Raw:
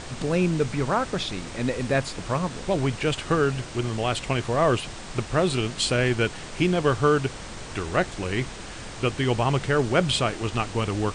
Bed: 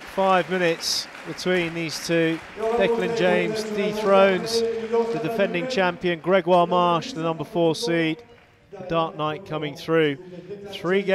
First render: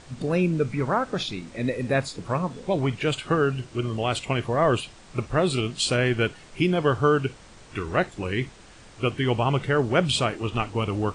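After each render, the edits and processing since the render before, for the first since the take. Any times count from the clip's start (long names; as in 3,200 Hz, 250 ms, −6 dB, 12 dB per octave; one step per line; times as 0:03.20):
noise reduction from a noise print 11 dB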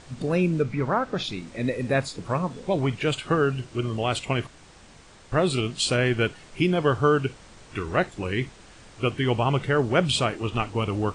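0:00.62–0:01.24: high-frequency loss of the air 64 metres
0:04.47–0:05.32: fill with room tone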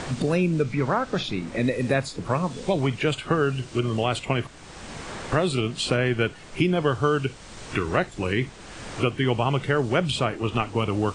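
multiband upward and downward compressor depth 70%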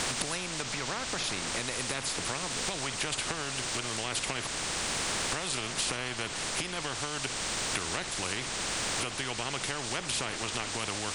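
downward compressor, threshold −28 dBFS, peak gain reduction 12 dB
every bin compressed towards the loudest bin 4 to 1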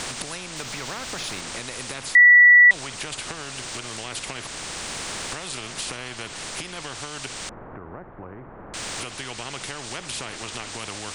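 0:00.56–0:01.41: mu-law and A-law mismatch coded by mu
0:02.15–0:02.71: beep over 1,950 Hz −8 dBFS
0:07.49–0:08.74: Bessel low-pass filter 900 Hz, order 6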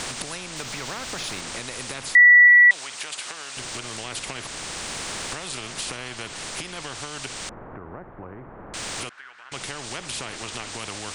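0:02.47–0:03.57: high-pass filter 900 Hz 6 dB per octave
0:09.09–0:09.52: resonant band-pass 1,500 Hz, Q 4.4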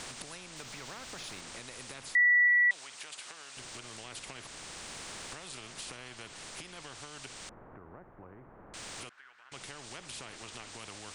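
level −12 dB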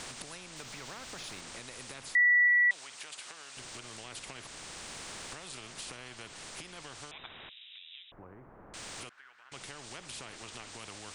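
0:07.11–0:08.12: voice inversion scrambler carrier 3,800 Hz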